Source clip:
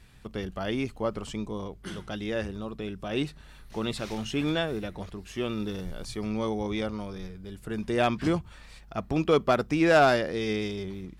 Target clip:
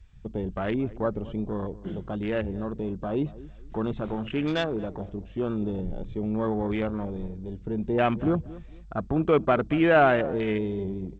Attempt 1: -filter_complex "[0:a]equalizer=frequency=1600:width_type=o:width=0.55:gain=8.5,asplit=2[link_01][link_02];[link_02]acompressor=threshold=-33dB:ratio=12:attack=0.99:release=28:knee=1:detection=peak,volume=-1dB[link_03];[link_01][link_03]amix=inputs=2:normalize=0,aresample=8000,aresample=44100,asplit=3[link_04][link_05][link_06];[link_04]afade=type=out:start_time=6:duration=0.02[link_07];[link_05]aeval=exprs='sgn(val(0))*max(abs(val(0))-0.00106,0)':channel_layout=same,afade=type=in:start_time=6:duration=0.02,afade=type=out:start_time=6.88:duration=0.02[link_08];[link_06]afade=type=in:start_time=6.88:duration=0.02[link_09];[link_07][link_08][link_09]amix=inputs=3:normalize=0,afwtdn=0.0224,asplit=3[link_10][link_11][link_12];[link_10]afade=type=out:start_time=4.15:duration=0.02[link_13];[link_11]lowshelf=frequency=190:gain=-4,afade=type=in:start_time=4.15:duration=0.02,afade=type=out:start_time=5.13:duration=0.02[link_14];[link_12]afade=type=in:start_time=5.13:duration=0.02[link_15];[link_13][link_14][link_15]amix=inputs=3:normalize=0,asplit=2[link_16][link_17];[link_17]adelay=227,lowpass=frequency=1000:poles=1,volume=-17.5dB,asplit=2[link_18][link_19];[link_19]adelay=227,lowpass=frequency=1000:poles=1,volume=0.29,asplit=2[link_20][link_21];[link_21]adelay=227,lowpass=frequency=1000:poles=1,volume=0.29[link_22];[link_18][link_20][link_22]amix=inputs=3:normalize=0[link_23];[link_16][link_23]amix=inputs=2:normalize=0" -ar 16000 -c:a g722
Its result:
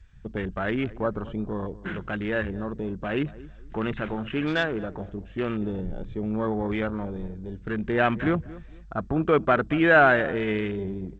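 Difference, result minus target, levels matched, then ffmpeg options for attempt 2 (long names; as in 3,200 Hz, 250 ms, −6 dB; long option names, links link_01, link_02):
2,000 Hz band +6.0 dB
-filter_complex "[0:a]asplit=2[link_01][link_02];[link_02]acompressor=threshold=-33dB:ratio=12:attack=0.99:release=28:knee=1:detection=peak,volume=-1dB[link_03];[link_01][link_03]amix=inputs=2:normalize=0,aresample=8000,aresample=44100,asplit=3[link_04][link_05][link_06];[link_04]afade=type=out:start_time=6:duration=0.02[link_07];[link_05]aeval=exprs='sgn(val(0))*max(abs(val(0))-0.00106,0)':channel_layout=same,afade=type=in:start_time=6:duration=0.02,afade=type=out:start_time=6.88:duration=0.02[link_08];[link_06]afade=type=in:start_time=6.88:duration=0.02[link_09];[link_07][link_08][link_09]amix=inputs=3:normalize=0,afwtdn=0.0224,asplit=3[link_10][link_11][link_12];[link_10]afade=type=out:start_time=4.15:duration=0.02[link_13];[link_11]lowshelf=frequency=190:gain=-4,afade=type=in:start_time=4.15:duration=0.02,afade=type=out:start_time=5.13:duration=0.02[link_14];[link_12]afade=type=in:start_time=5.13:duration=0.02[link_15];[link_13][link_14][link_15]amix=inputs=3:normalize=0,asplit=2[link_16][link_17];[link_17]adelay=227,lowpass=frequency=1000:poles=1,volume=-17.5dB,asplit=2[link_18][link_19];[link_19]adelay=227,lowpass=frequency=1000:poles=1,volume=0.29,asplit=2[link_20][link_21];[link_21]adelay=227,lowpass=frequency=1000:poles=1,volume=0.29[link_22];[link_18][link_20][link_22]amix=inputs=3:normalize=0[link_23];[link_16][link_23]amix=inputs=2:normalize=0" -ar 16000 -c:a g722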